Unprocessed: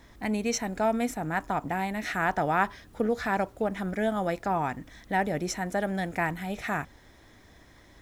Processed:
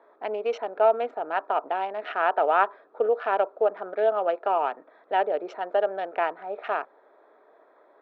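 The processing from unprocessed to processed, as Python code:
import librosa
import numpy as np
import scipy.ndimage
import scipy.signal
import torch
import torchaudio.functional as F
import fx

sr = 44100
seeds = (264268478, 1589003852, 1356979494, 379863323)

y = fx.wiener(x, sr, points=15)
y = fx.cabinet(y, sr, low_hz=400.0, low_slope=24, high_hz=3200.0, hz=(430.0, 630.0, 920.0, 1300.0, 2000.0, 2900.0), db=(8, 8, 3, 7, -8, 9))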